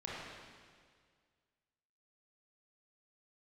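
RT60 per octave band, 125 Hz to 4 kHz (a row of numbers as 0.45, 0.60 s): 2.0, 2.0, 1.9, 1.8, 1.8, 1.8 s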